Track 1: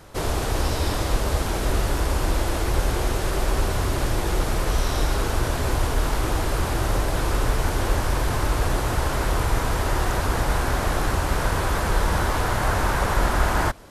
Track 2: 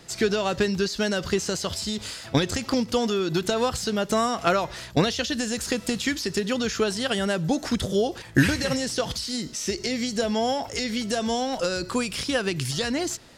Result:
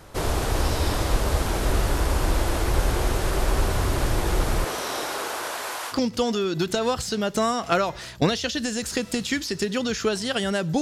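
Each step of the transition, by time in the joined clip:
track 1
4.64–5.95 s: high-pass 270 Hz -> 1 kHz
5.92 s: go over to track 2 from 2.67 s, crossfade 0.06 s

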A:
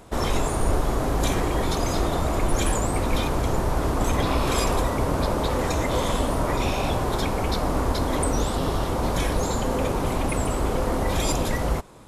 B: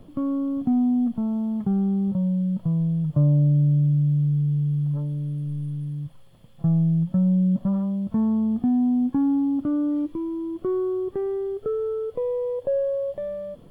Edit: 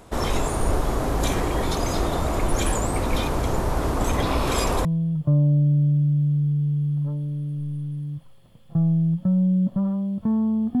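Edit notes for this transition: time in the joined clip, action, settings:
A
4.85 s: go over to B from 2.74 s

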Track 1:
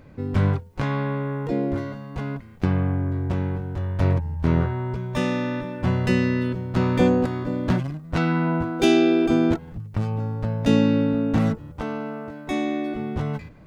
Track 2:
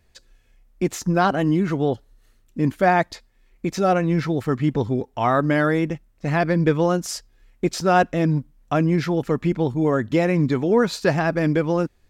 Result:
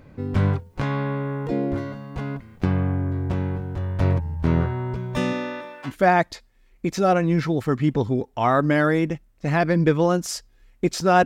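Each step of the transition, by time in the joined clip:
track 1
5.32–5.94 s: high-pass 210 Hz -> 1.3 kHz
5.89 s: go over to track 2 from 2.69 s, crossfade 0.10 s

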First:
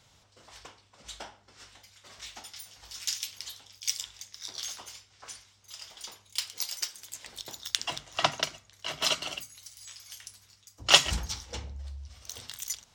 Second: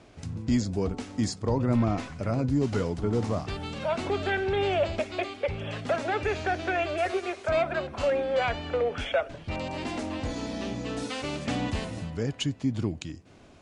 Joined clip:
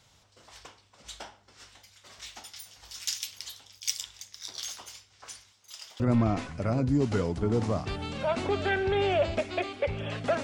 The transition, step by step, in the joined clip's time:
first
5.52–6.00 s: high-pass 280 Hz 6 dB/octave
6.00 s: go over to second from 1.61 s

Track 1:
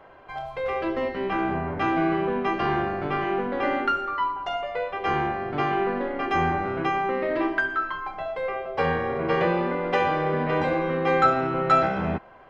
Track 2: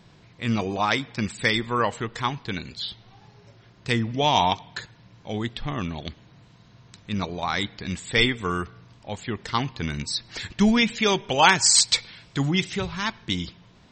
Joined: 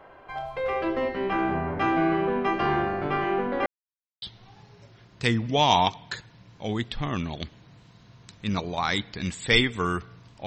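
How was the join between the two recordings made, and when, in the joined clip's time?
track 1
3.66–4.22 s: mute
4.22 s: go over to track 2 from 2.87 s

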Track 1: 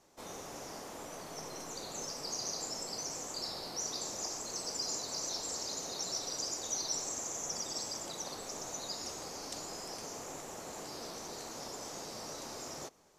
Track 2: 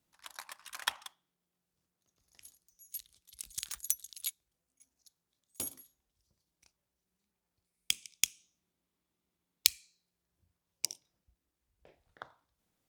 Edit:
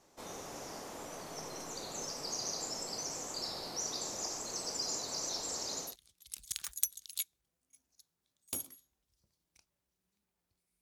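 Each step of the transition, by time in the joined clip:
track 1
5.88 s: go over to track 2 from 2.95 s, crossfade 0.16 s

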